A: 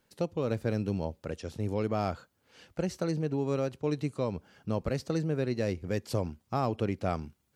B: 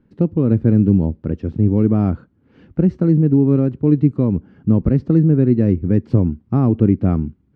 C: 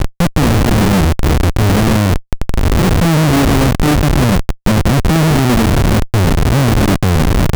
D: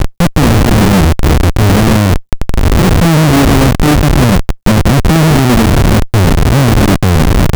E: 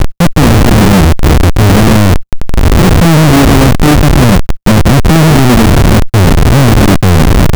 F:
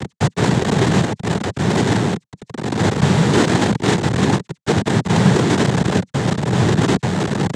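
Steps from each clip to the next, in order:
low-pass filter 1,700 Hz 12 dB per octave; low shelf with overshoot 420 Hz +12.5 dB, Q 1.5; level +4.5 dB
wind on the microphone 120 Hz −17 dBFS; comparator with hysteresis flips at −25 dBFS; level +3.5 dB
in parallel at −2 dB: brickwall limiter −15 dBFS, peak gain reduction 11 dB; on the sum: bit-depth reduction 12 bits, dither none; level +1 dB
leveller curve on the samples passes 5; level −2 dB
cochlear-implant simulation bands 6; level −9.5 dB

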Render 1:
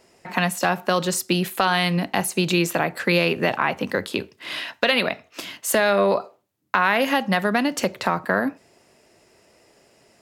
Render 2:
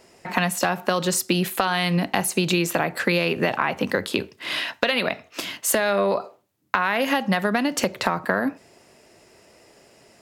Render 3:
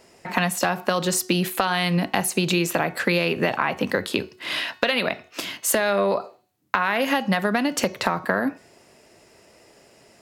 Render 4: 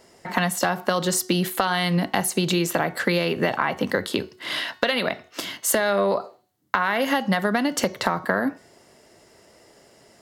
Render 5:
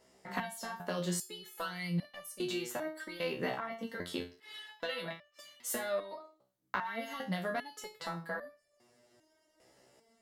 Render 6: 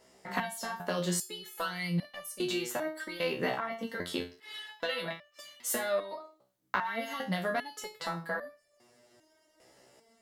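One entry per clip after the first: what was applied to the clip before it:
downward compressor 5 to 1, threshold −21 dBFS, peak gain reduction 7.5 dB; level +3.5 dB
hum removal 367.3 Hz, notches 18
notch filter 2,500 Hz, Q 7.2
step-sequenced resonator 2.5 Hz 64–590 Hz; level −4 dB
low-shelf EQ 320 Hz −2.5 dB; level +4.5 dB

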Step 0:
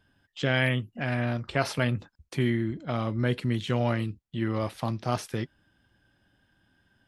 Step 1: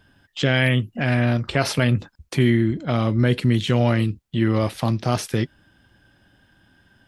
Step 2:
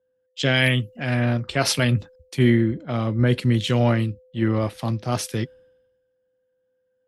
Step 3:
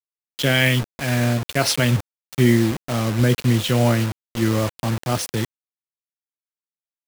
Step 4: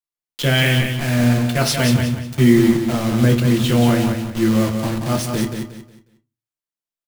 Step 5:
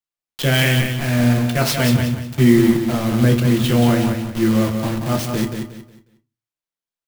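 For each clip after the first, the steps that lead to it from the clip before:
dynamic equaliser 1,000 Hz, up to −4 dB, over −42 dBFS, Q 0.84; in parallel at +0.5 dB: brickwall limiter −19.5 dBFS, peak gain reduction 8 dB; on the sum: level +3.5 dB
steady tone 510 Hz −41 dBFS; multiband upward and downward expander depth 100%; level −1.5 dB
bit reduction 5 bits; level +1.5 dB
repeating echo 181 ms, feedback 30%, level −6 dB; on a send at −5 dB: convolution reverb RT60 0.25 s, pre-delay 6 ms; on the sum: level −1 dB
converter with an unsteady clock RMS 0.024 ms

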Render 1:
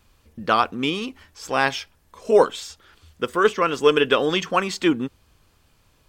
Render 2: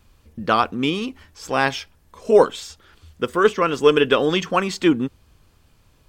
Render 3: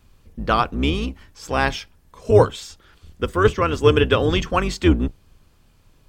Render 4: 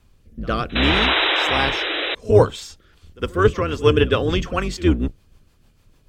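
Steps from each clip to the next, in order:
low-shelf EQ 370 Hz +5 dB
sub-octave generator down 2 octaves, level +2 dB; level −1 dB
sound drawn into the spectrogram noise, 0:00.75–0:02.15, 290–4,000 Hz −19 dBFS; echo ahead of the sound 60 ms −21 dB; rotating-speaker cabinet horn 0.65 Hz, later 6.7 Hz, at 0:02.51; level +1 dB

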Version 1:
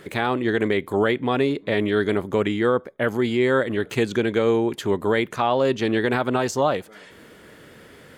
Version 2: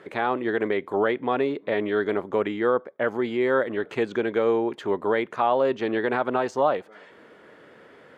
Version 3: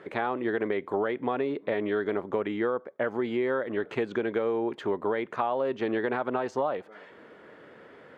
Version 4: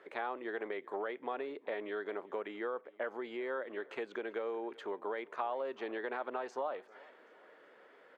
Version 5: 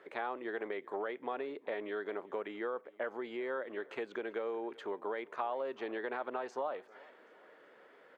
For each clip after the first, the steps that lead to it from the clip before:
resonant band-pass 790 Hz, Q 0.61
high-shelf EQ 4,900 Hz −9 dB; downward compressor, threshold −24 dBFS, peak gain reduction 8 dB
high-pass filter 420 Hz 12 dB per octave; repeating echo 387 ms, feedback 44%, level −23 dB; level −8 dB
low-shelf EQ 96 Hz +10 dB

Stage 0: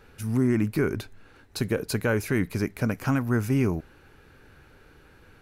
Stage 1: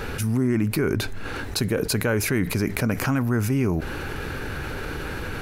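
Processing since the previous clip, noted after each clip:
envelope flattener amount 70%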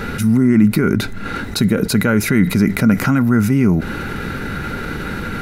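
hollow resonant body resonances 200/1,400/2,000/3,800 Hz, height 12 dB, ringing for 40 ms
level +3 dB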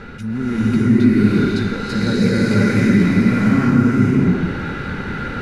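high-frequency loss of the air 90 metres
slow-attack reverb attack 610 ms, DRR −9.5 dB
level −10 dB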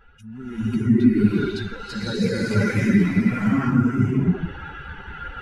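spectral dynamics exaggerated over time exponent 2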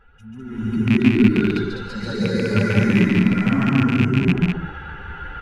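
loose part that buzzes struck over −16 dBFS, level −10 dBFS
high-shelf EQ 3,600 Hz −7 dB
loudspeakers that aren't time-aligned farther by 48 metres −3 dB, 69 metres −4 dB

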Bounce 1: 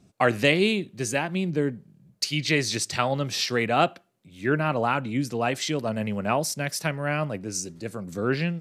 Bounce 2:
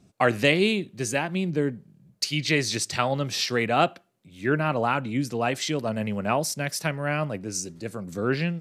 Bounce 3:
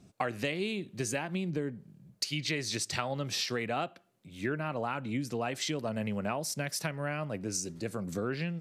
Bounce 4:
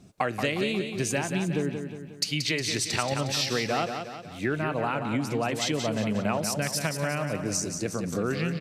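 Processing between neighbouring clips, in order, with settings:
no processing that can be heard
downward compressor 6 to 1, threshold −30 dBFS, peak gain reduction 14.5 dB
repeating echo 180 ms, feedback 49%, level −7 dB; level +5 dB

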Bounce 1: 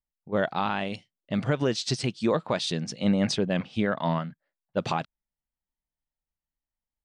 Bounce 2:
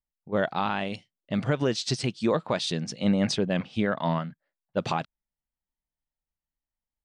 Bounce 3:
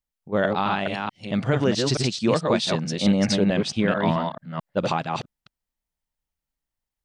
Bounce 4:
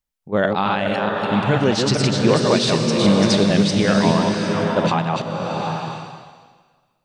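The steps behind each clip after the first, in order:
no processing that can be heard
delay that plays each chunk backwards 219 ms, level −3 dB; level +3 dB
slow-attack reverb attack 770 ms, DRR 2 dB; level +3.5 dB

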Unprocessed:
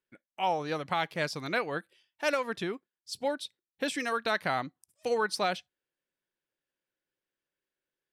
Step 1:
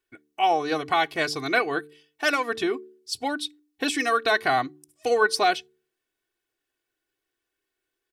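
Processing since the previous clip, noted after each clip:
comb filter 2.7 ms, depth 80%
hum removal 74.35 Hz, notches 6
level +5.5 dB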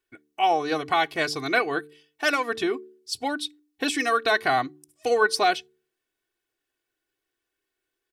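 no processing that can be heard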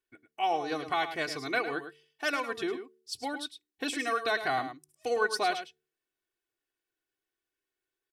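single-tap delay 106 ms −10.5 dB
level −7.5 dB

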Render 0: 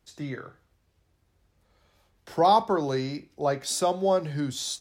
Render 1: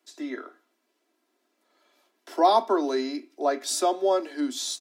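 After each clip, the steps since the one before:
Butterworth high-pass 230 Hz 72 dB per octave
comb filter 3 ms, depth 55%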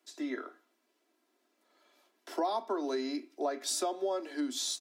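downward compressor 5 to 1, threshold −28 dBFS, peak gain reduction 12.5 dB
level −2 dB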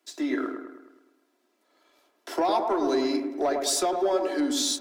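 leveller curve on the samples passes 1
delay with a low-pass on its return 105 ms, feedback 52%, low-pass 1,300 Hz, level −4 dB
level +4.5 dB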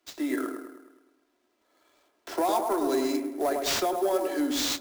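sample-rate reduction 11,000 Hz, jitter 20%
level −1.5 dB

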